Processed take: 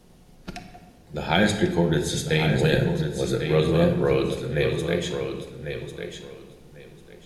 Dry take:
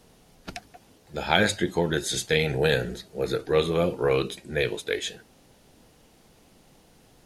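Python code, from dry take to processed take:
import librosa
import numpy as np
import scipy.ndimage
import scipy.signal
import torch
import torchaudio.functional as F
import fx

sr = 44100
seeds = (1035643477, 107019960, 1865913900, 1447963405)

y = fx.low_shelf(x, sr, hz=400.0, db=7.0)
y = fx.echo_feedback(y, sr, ms=1098, feedback_pct=20, wet_db=-8)
y = fx.room_shoebox(y, sr, seeds[0], volume_m3=1200.0, walls='mixed', distance_m=0.93)
y = y * librosa.db_to_amplitude(-2.5)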